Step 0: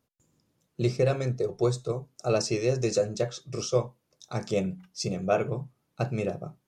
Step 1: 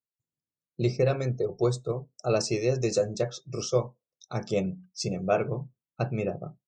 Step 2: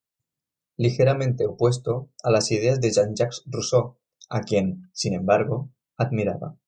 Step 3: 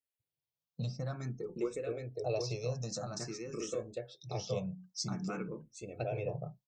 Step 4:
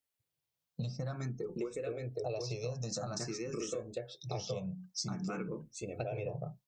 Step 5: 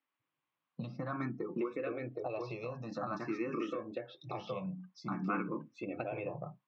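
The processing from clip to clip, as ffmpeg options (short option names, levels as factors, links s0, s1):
-af "afftdn=nr=28:nf=-48"
-af "bandreject=f=380:w=12,volume=2"
-filter_complex "[0:a]acompressor=threshold=0.0282:ratio=2,aecho=1:1:769:0.631,asplit=2[s0][s1];[s1]afreqshift=0.51[s2];[s0][s2]amix=inputs=2:normalize=1,volume=0.501"
-af "acompressor=threshold=0.0112:ratio=6,volume=1.68"
-af "alimiter=level_in=1.78:limit=0.0631:level=0:latency=1:release=165,volume=0.562,highpass=240,equalizer=f=290:t=q:w=4:g=7,equalizer=f=440:t=q:w=4:g=-10,equalizer=f=650:t=q:w=4:g=-5,equalizer=f=1100:t=q:w=4:g=9,lowpass=f=2800:w=0.5412,lowpass=f=2800:w=1.3066,volume=2"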